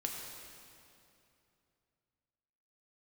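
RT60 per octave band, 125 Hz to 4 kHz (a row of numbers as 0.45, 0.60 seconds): 3.4, 3.0, 2.9, 2.6, 2.4, 2.3 seconds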